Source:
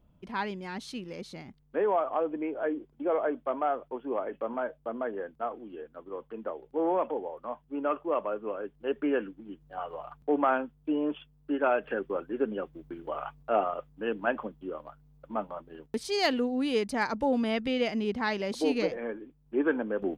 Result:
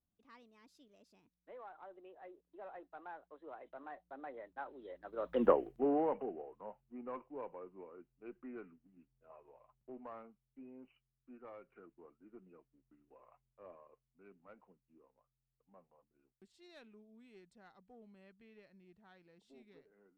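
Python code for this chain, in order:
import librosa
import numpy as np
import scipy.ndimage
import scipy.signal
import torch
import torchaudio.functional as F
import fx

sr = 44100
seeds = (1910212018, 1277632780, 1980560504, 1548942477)

y = fx.diode_clip(x, sr, knee_db=-15.5)
y = fx.doppler_pass(y, sr, speed_mps=53, closest_m=4.3, pass_at_s=5.45)
y = y * librosa.db_to_amplitude(10.5)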